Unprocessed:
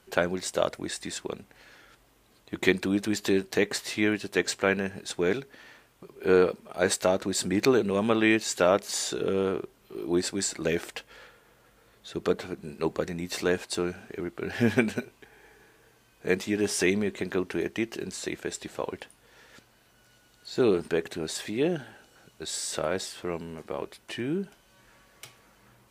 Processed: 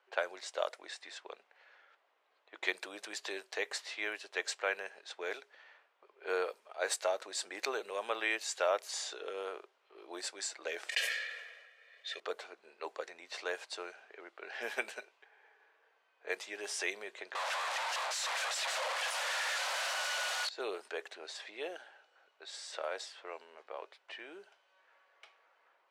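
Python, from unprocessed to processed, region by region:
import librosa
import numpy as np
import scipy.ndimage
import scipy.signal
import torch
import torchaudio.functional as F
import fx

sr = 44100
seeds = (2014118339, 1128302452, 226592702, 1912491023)

y = fx.chain(x, sr, fx.high_shelf_res(hz=1500.0, db=8.0, q=3.0),
    fx.comb(ms=1.7, depth=0.75),
    fx.sustainer(db_per_s=39.0), at=(10.89, 12.2))
y = fx.chain(y, sr, fx.clip_1bit(),
    fx.steep_highpass(hz=510.0, slope=96),
    fx.leveller(passes=5), at=(17.35, 20.49))
y = fx.env_lowpass(y, sr, base_hz=2500.0, full_db=-20.5)
y = scipy.signal.sosfilt(scipy.signal.butter(4, 540.0, 'highpass', fs=sr, output='sos'), y)
y = F.gain(torch.from_numpy(y), -7.0).numpy()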